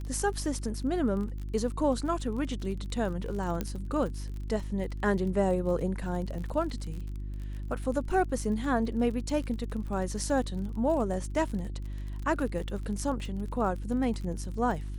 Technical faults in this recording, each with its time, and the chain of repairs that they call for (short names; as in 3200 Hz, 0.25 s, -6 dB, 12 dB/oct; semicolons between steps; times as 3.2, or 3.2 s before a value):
crackle 37/s -37 dBFS
hum 50 Hz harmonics 7 -36 dBFS
3.61 pop -17 dBFS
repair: de-click; de-hum 50 Hz, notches 7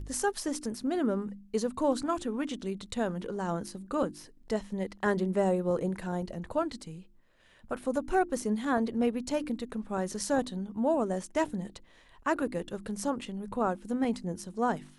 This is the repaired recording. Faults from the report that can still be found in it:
none